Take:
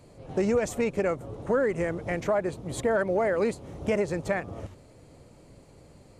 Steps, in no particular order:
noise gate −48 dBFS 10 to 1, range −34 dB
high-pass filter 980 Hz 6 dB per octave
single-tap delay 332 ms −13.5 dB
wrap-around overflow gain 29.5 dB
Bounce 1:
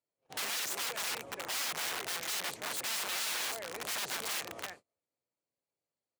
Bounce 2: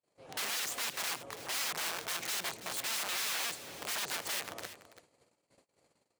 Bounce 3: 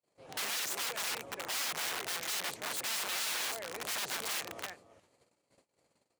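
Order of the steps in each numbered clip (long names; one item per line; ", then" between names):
single-tap delay, then wrap-around overflow, then high-pass filter, then noise gate
wrap-around overflow, then single-tap delay, then noise gate, then high-pass filter
noise gate, then single-tap delay, then wrap-around overflow, then high-pass filter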